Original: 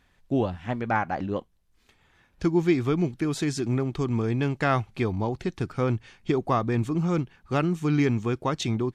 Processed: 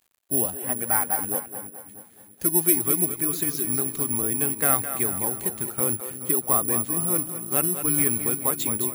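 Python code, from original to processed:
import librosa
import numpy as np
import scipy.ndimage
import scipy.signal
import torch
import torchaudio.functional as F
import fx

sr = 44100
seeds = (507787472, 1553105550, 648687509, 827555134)

p1 = fx.spec_quant(x, sr, step_db=15)
p2 = fx.low_shelf(p1, sr, hz=160.0, db=-12.0)
p3 = fx.quant_dither(p2, sr, seeds[0], bits=10, dither='none')
p4 = p3 + fx.echo_split(p3, sr, split_hz=320.0, low_ms=325, high_ms=212, feedback_pct=52, wet_db=-9.5, dry=0)
p5 = (np.kron(scipy.signal.resample_poly(p4, 1, 4), np.eye(4)[0]) * 4)[:len(p4)]
y = F.gain(torch.from_numpy(p5), -2.0).numpy()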